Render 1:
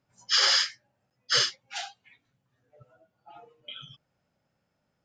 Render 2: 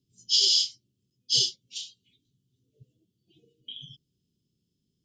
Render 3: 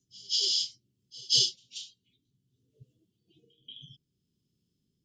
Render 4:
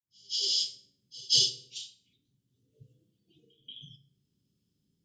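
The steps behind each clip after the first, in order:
Chebyshev band-stop 400–3100 Hz, order 4; gain +2 dB
pre-echo 0.183 s -23.5 dB; rotary speaker horn 0.6 Hz
opening faded in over 0.59 s; reverb RT60 0.80 s, pre-delay 3 ms, DRR 7 dB

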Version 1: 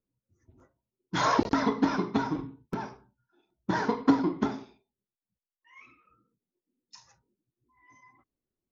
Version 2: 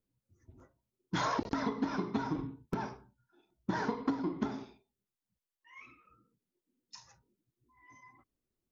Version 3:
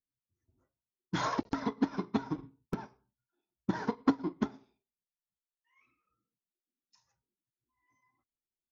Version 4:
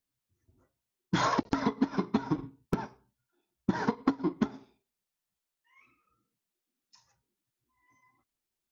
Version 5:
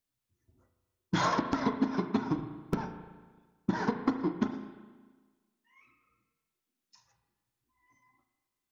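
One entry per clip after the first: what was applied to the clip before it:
low shelf 120 Hz +4 dB; compressor 5:1, threshold -30 dBFS, peak gain reduction 13.5 dB
upward expander 2.5:1, over -43 dBFS; gain +7.5 dB
compressor 10:1, threshold -30 dBFS, peak gain reduction 11 dB; gain +7.5 dB
in parallel at -9 dB: hard clip -21 dBFS, distortion -13 dB; on the sum: reverb RT60 1.4 s, pre-delay 34 ms, DRR 7 dB; gain -3.5 dB

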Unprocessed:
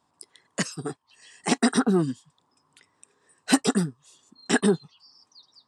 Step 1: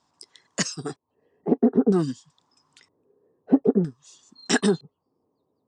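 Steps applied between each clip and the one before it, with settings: LFO low-pass square 0.52 Hz 460–6200 Hz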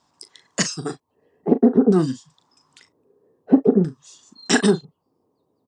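doubler 38 ms -12 dB; gain +4 dB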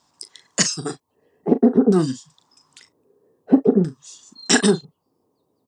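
high shelf 4100 Hz +7 dB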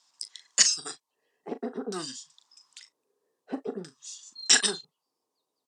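band-pass 5100 Hz, Q 0.57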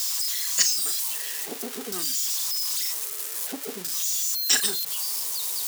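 switching spikes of -18 dBFS; gain -2.5 dB

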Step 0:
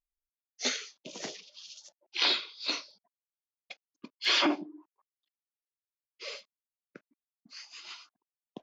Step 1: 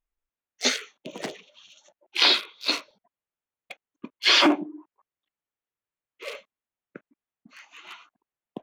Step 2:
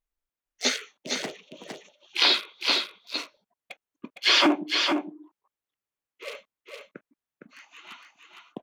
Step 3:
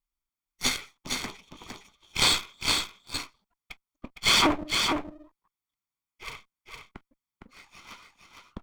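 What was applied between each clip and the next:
Wiener smoothing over 9 samples; gain +8 dB
echo 0.46 s -5 dB; gain -1.5 dB
minimum comb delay 0.88 ms

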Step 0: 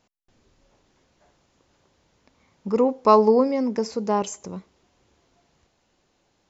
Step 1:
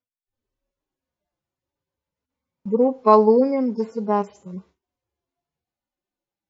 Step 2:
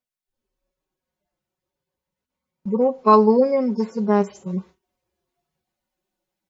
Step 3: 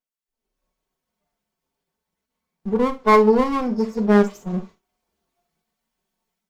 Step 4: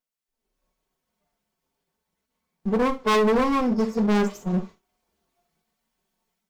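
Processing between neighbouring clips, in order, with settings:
median-filter separation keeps harmonic; gate with hold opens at -45 dBFS; high shelf 5800 Hz -7.5 dB; gain +2 dB
vocal rider 2 s; harmonic-percussive split percussive +3 dB; comb 5.4 ms, depth 53%
minimum comb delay 4.5 ms; AGC gain up to 7.5 dB; non-linear reverb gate 80 ms flat, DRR 9 dB; gain -3 dB
hard clip -19 dBFS, distortion -5 dB; gain +1.5 dB

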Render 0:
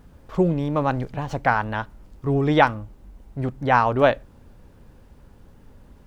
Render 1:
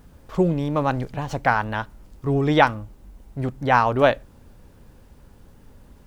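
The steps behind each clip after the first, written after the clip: high shelf 4300 Hz +6 dB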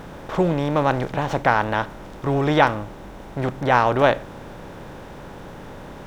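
per-bin compression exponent 0.6; gain -2 dB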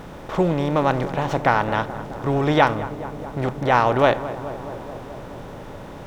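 notch 1600 Hz, Q 21; darkening echo 0.214 s, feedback 83%, low-pass 1600 Hz, level -14 dB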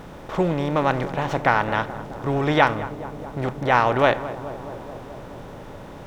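dynamic EQ 2000 Hz, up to +4 dB, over -32 dBFS, Q 0.98; gain -2 dB

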